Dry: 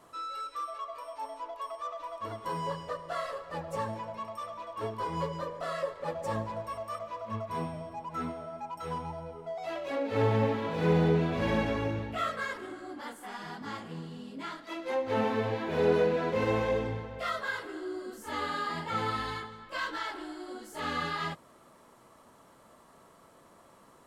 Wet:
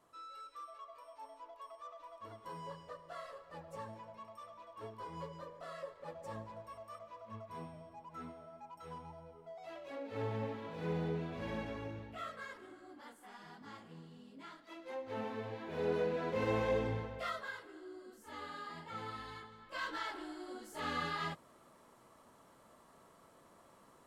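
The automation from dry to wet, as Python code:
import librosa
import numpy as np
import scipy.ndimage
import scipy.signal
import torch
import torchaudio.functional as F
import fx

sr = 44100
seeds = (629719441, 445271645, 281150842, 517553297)

y = fx.gain(x, sr, db=fx.line((15.5, -12.5), (17.03, -2.0), (17.64, -13.0), (19.28, -13.0), (19.92, -5.0)))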